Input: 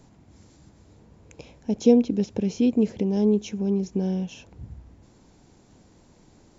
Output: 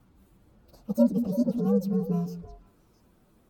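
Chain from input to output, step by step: inharmonic rescaling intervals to 127%; delay with a stepping band-pass 0.312 s, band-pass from 250 Hz, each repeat 1.4 oct, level -7 dB; time stretch by phase-locked vocoder 0.53×; gain -1.5 dB

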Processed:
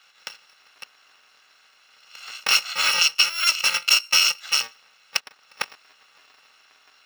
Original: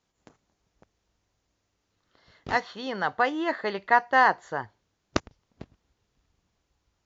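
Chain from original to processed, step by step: FFT order left unsorted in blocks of 128 samples; HPF 1300 Hz 12 dB/oct; air absorption 200 m; compressor 5:1, threshold -51 dBFS, peak gain reduction 19 dB; maximiser +33.5 dB

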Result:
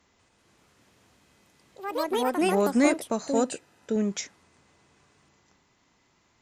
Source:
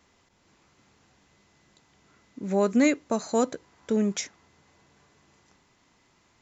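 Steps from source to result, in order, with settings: added harmonics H 3 -23 dB, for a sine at -11 dBFS; echoes that change speed 0.192 s, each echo +4 st, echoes 3; 3.34–3.96 notch comb 1100 Hz

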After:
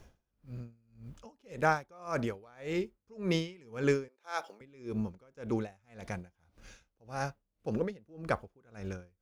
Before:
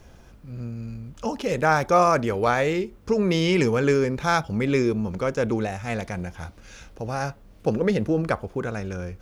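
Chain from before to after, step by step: 4.08–4.61 HPF 380 Hz 24 dB/oct; dB-linear tremolo 1.8 Hz, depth 31 dB; gain -6 dB

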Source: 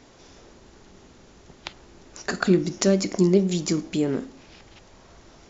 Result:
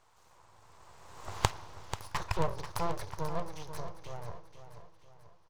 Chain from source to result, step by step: Doppler pass-by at 1.38, 51 m/s, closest 5 m; full-wave rectifier; fifteen-band EQ 100 Hz +10 dB, 250 Hz -11 dB, 1000 Hz +12 dB; on a send: feedback echo 0.487 s, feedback 45%, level -10.5 dB; on the sum: gain +9 dB

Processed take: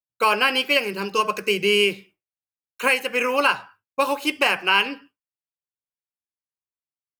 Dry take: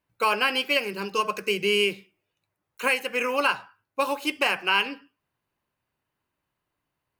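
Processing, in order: expander -47 dBFS; gain +4 dB

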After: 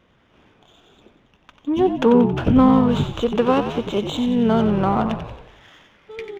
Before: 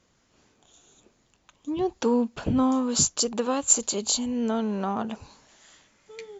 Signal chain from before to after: downsampling 8000 Hz; frequency-shifting echo 91 ms, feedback 54%, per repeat -54 Hz, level -8.5 dB; running maximum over 3 samples; gain +8.5 dB

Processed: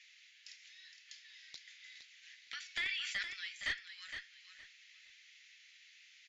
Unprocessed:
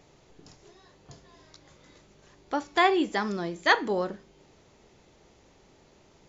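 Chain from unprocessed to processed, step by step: steep high-pass 1900 Hz 48 dB/oct; high shelf 5200 Hz -8.5 dB; compressor 3:1, threshold -50 dBFS, peak gain reduction 19.5 dB; flange 1.9 Hz, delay 6.5 ms, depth 1 ms, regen -53%; one-sided clip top -47.5 dBFS; air absorption 100 m; feedback echo 0.464 s, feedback 22%, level -9 dB; 2.7–3.23 sustainer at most 23 dB/s; gain +15 dB

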